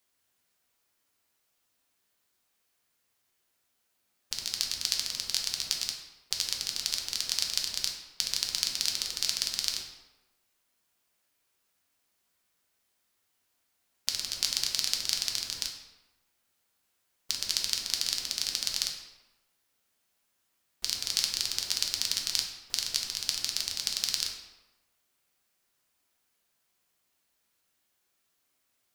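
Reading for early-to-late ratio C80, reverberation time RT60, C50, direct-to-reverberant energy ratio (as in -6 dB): 7.5 dB, 1.1 s, 5.0 dB, 1.0 dB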